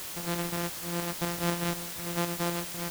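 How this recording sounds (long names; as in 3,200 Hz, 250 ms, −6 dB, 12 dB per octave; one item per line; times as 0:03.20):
a buzz of ramps at a fixed pitch in blocks of 256 samples
tremolo saw up 4 Hz, depth 45%
a quantiser's noise floor 6 bits, dither triangular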